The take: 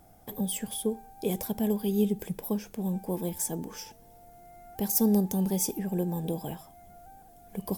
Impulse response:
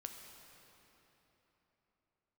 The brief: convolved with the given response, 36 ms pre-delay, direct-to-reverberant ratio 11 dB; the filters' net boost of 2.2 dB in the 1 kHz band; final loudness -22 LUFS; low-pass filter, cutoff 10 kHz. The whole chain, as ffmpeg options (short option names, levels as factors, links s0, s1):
-filter_complex "[0:a]lowpass=10000,equalizer=f=1000:t=o:g=3,asplit=2[s0][s1];[1:a]atrim=start_sample=2205,adelay=36[s2];[s1][s2]afir=irnorm=-1:irlink=0,volume=0.422[s3];[s0][s3]amix=inputs=2:normalize=0,volume=2.66"